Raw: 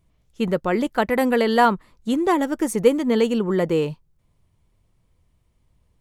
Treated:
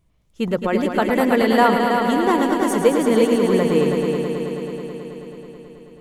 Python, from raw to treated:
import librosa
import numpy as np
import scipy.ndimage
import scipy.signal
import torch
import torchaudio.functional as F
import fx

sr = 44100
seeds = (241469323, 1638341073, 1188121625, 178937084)

y = x + fx.echo_heads(x, sr, ms=108, heads='all three', feedback_pct=73, wet_db=-9.5, dry=0)